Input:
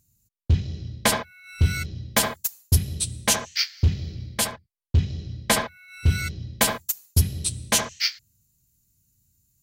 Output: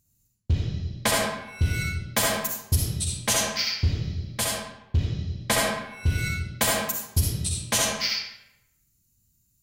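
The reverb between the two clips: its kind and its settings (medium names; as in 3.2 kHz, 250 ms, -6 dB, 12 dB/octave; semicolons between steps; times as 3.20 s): algorithmic reverb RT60 0.86 s, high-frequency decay 0.75×, pre-delay 20 ms, DRR -2 dB; trim -4 dB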